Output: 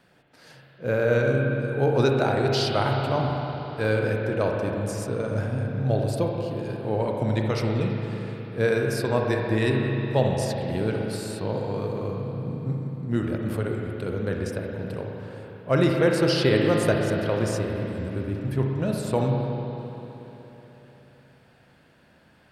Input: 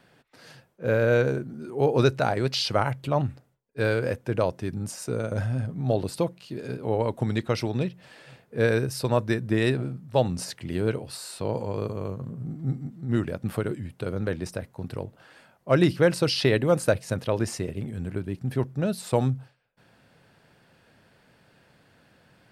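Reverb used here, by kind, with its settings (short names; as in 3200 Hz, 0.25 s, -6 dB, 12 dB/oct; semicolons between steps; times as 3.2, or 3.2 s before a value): spring tank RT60 3.6 s, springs 37/59 ms, chirp 30 ms, DRR 0 dB; gain -1.5 dB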